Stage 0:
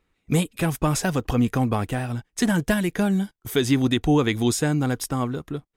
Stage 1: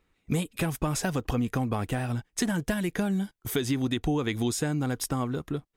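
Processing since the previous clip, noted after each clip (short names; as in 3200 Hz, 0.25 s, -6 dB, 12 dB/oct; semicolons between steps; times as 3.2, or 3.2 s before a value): compressor 4:1, threshold -25 dBFS, peak gain reduction 9 dB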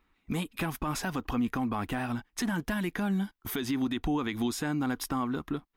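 graphic EQ 125/250/500/1000/8000 Hz -10/+4/-8/+5/-9 dB; limiter -23 dBFS, peak gain reduction 7 dB; gain +1 dB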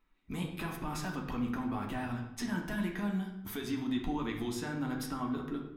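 flange 1.4 Hz, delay 9.6 ms, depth 2.2 ms, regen -57%; on a send at -1 dB: reverb RT60 0.75 s, pre-delay 3 ms; on the sum: gain -3.5 dB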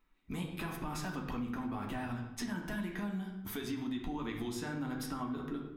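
compressor, threshold -34 dBFS, peak gain reduction 6 dB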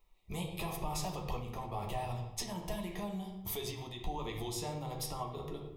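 fixed phaser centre 630 Hz, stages 4; gain +6 dB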